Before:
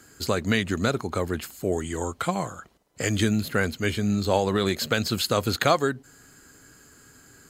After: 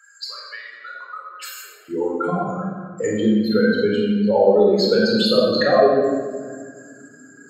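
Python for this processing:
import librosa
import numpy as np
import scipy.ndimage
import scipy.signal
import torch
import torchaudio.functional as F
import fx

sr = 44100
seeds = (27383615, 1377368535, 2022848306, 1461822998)

y = fx.spec_expand(x, sr, power=2.7)
y = fx.highpass(y, sr, hz=fx.steps((0.0, 1300.0), (1.88, 210.0)), slope=24)
y = fx.room_shoebox(y, sr, seeds[0], volume_m3=1700.0, walls='mixed', distance_m=4.2)
y = fx.dynamic_eq(y, sr, hz=1700.0, q=0.73, threshold_db=-38.0, ratio=4.0, max_db=-4)
y = y * 10.0 ** (2.5 / 20.0)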